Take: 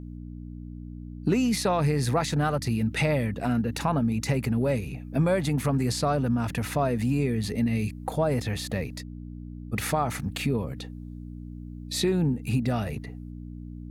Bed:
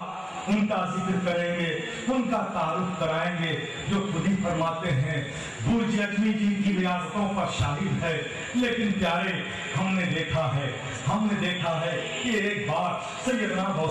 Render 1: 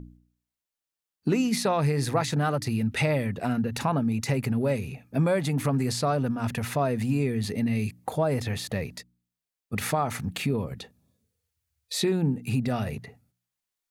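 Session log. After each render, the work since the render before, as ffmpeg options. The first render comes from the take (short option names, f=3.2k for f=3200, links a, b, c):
-af "bandreject=f=60:t=h:w=4,bandreject=f=120:t=h:w=4,bandreject=f=180:t=h:w=4,bandreject=f=240:t=h:w=4,bandreject=f=300:t=h:w=4"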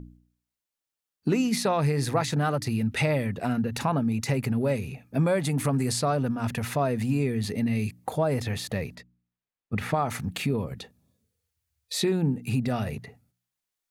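-filter_complex "[0:a]asettb=1/sr,asplit=3[a][b][c];[a]atrim=end=5.434[d];[b]atrim=start=5.43:end=6,asetpts=PTS-STARTPTS,afade=t=in:d=0.004:c=qsin,afade=t=out:st=0.566:d=0.004:c=qsin,equalizer=f=9.1k:w=1.6:g=6[e];[c]atrim=start=5.996[f];[d][e]acrossfade=d=0.004:c1=hsin:c2=qsin[g];[g][f]acrossfade=d=0.004:c1=qsin:c2=hsin,asettb=1/sr,asplit=3[h][i][j];[h]atrim=end=8.954[k];[i]atrim=start=8.95:end=9.94,asetpts=PTS-STARTPTS,afade=t=in:d=0.004:c=qsin,afade=t=out:st=0.986:d=0.004:c=qsin,bass=f=250:g=3,treble=f=4k:g=-14[l];[j]atrim=start=9.936[m];[k][l]acrossfade=d=0.004:c1=hsin:c2=qsin[n];[n][m]acrossfade=d=0.004:c1=qsin:c2=hsin"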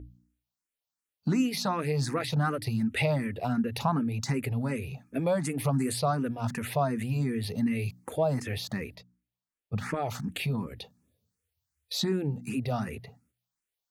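-filter_complex "[0:a]asplit=2[a][b];[b]afreqshift=2.7[c];[a][c]amix=inputs=2:normalize=1"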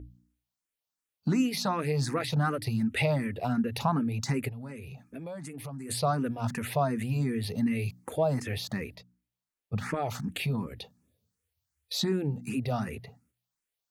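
-filter_complex "[0:a]asplit=3[a][b][c];[a]afade=t=out:st=4.48:d=0.02[d];[b]acompressor=threshold=-41dB:ratio=3:attack=3.2:release=140:knee=1:detection=peak,afade=t=in:st=4.48:d=0.02,afade=t=out:st=5.89:d=0.02[e];[c]afade=t=in:st=5.89:d=0.02[f];[d][e][f]amix=inputs=3:normalize=0"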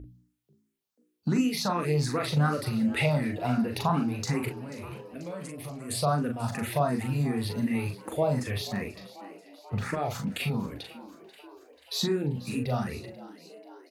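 -filter_complex "[0:a]asplit=2[a][b];[b]adelay=40,volume=-5dB[c];[a][c]amix=inputs=2:normalize=0,asplit=7[d][e][f][g][h][i][j];[e]adelay=487,afreqshift=91,volume=-17.5dB[k];[f]adelay=974,afreqshift=182,volume=-21.5dB[l];[g]adelay=1461,afreqshift=273,volume=-25.5dB[m];[h]adelay=1948,afreqshift=364,volume=-29.5dB[n];[i]adelay=2435,afreqshift=455,volume=-33.6dB[o];[j]adelay=2922,afreqshift=546,volume=-37.6dB[p];[d][k][l][m][n][o][p]amix=inputs=7:normalize=0"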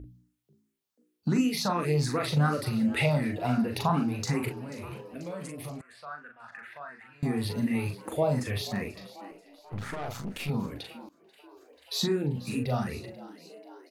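-filter_complex "[0:a]asettb=1/sr,asplit=3[a][b][c];[a]atrim=end=5.814[d];[b]atrim=start=5.81:end=7.23,asetpts=PTS-STARTPTS,afade=t=in:d=0.004:c=qsin,afade=t=out:st=1.416:d=0.004:c=qsin,bandpass=f=1.6k:t=q:w=4.4[e];[c]atrim=start=7.226[f];[d][e]acrossfade=d=0.004:c1=hsin:c2=qsin[g];[g][f]acrossfade=d=0.004:c1=qsin:c2=hsin,asettb=1/sr,asplit=3[h][i][j];[h]atrim=end=9.314[k];[i]atrim=start=9.31:end=10.49,asetpts=PTS-STARTPTS,afade=t=in:d=0.004:c=qsin,afade=t=out:st=1.176:d=0.004:c=qsin,aeval=exprs='(tanh(35.5*val(0)+0.65)-tanh(0.65))/35.5':c=same[l];[j]atrim=start=10.486[m];[k][l]acrossfade=d=0.004:c1=hsin:c2=qsin[n];[n][m]acrossfade=d=0.004:c1=qsin:c2=hsin,asplit=2[o][p];[o]atrim=end=11.09,asetpts=PTS-STARTPTS,afade=t=out:st=11.086:d=0.004:c=hsin:silence=0.112202[q];[p]atrim=start=11.09,asetpts=PTS-STARTPTS,afade=t=in:d=0.96:c=qsin:silence=0.112202[r];[q][r]concat=n=2:v=0:a=1"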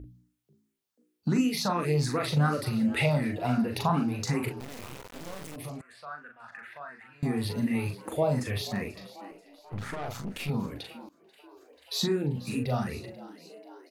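-filter_complex "[0:a]asettb=1/sr,asplit=3[a][b][c];[a]atrim=end=4.604[d];[b]atrim=start=4.6:end=5.56,asetpts=PTS-STARTPTS,afade=t=in:d=0.004:c=qsin,afade=t=out:st=0.956:d=0.004:c=qsin,acrusher=bits=4:dc=4:mix=0:aa=0.000001[e];[c]atrim=start=5.556[f];[d][e]acrossfade=d=0.004:c1=hsin:c2=qsin[g];[g][f]acrossfade=d=0.004:c1=qsin:c2=hsin"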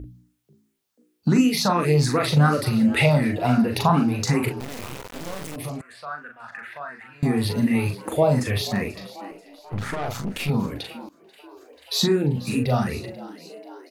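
-af "volume=7.5dB"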